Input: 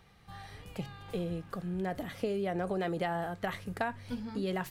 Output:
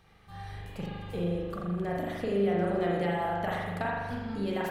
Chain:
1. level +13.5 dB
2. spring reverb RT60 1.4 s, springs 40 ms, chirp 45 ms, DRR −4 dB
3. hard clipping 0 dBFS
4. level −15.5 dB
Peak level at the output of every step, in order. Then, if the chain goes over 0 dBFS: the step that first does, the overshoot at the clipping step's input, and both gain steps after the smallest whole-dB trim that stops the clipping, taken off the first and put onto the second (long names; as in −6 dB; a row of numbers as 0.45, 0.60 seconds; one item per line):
−4.5, −2.0, −2.0, −17.5 dBFS
no step passes full scale